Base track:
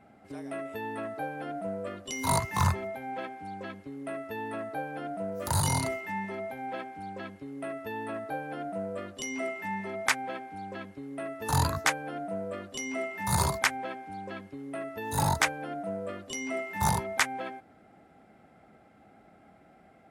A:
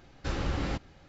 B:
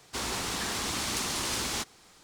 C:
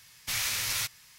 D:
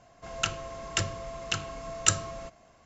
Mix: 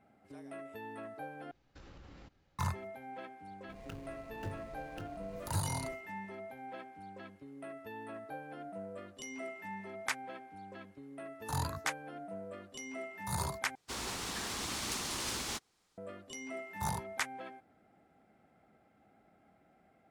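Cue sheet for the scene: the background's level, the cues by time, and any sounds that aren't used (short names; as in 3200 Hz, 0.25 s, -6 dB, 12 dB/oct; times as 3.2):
base track -9.5 dB
1.51 replace with A -16.5 dB + compressor, threshold -33 dBFS
3.46 add D -8.5 dB + median filter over 41 samples
13.75 replace with B -5.5 dB + upward expander, over -55 dBFS
not used: C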